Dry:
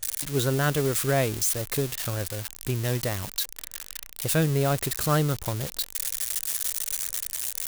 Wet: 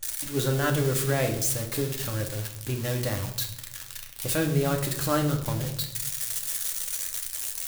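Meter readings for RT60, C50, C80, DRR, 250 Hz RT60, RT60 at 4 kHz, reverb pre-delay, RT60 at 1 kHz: 0.80 s, 9.5 dB, 12.5 dB, 2.0 dB, 1.1 s, 0.60 s, 4 ms, 0.75 s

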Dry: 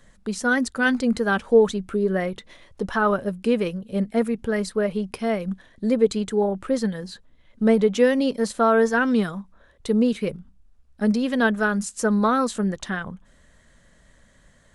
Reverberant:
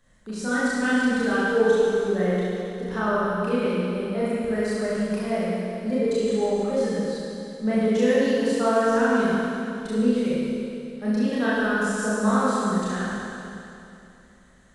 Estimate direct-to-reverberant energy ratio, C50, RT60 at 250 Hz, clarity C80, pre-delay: −10.0 dB, −4.5 dB, 2.8 s, −2.5 dB, 28 ms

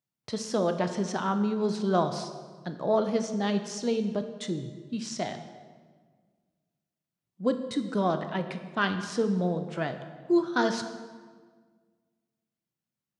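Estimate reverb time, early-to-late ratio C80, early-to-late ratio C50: 1.6 s, 10.5 dB, 9.5 dB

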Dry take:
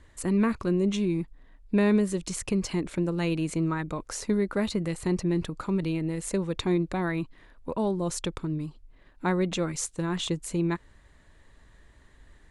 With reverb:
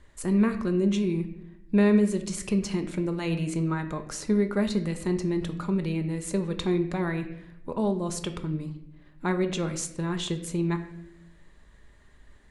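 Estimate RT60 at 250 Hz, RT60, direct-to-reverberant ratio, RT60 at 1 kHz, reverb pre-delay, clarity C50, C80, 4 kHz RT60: 1.1 s, 0.80 s, 6.0 dB, 0.65 s, 5 ms, 11.0 dB, 13.5 dB, 0.60 s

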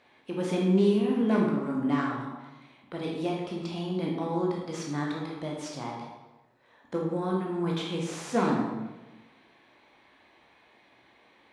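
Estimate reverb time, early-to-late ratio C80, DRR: 1.1 s, 4.5 dB, −2.5 dB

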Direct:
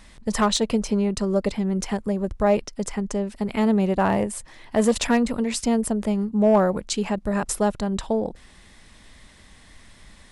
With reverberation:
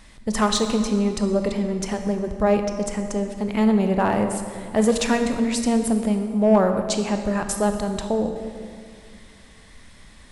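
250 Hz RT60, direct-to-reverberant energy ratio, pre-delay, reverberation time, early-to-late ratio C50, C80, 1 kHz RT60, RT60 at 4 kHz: 2.7 s, 6.0 dB, 19 ms, 2.2 s, 7.0 dB, 8.0 dB, 2.0 s, 1.6 s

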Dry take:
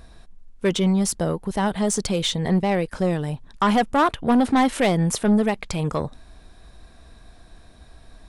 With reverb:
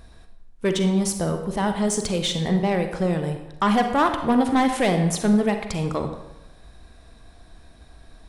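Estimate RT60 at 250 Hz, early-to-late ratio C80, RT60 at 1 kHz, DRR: 0.95 s, 9.5 dB, 1.0 s, 6.0 dB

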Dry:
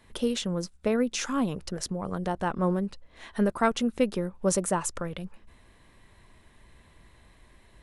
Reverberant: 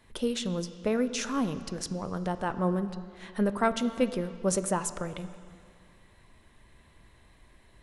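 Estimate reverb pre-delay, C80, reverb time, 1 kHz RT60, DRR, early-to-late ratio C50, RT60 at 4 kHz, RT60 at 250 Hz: 4 ms, 13.0 dB, 2.2 s, 2.2 s, 11.0 dB, 12.5 dB, 2.0 s, 2.2 s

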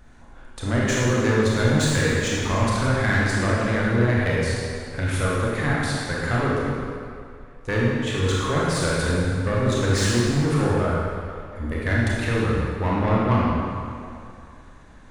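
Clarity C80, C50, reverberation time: −1.0 dB, −2.5 dB, 2.4 s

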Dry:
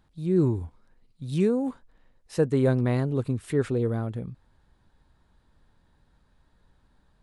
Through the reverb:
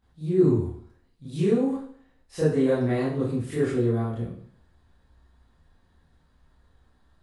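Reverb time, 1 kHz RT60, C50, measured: 0.55 s, 0.55 s, 1.5 dB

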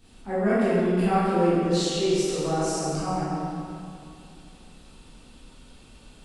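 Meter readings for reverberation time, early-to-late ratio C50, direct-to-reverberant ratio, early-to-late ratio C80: 2.6 s, −4.5 dB, −12.0 dB, −2.0 dB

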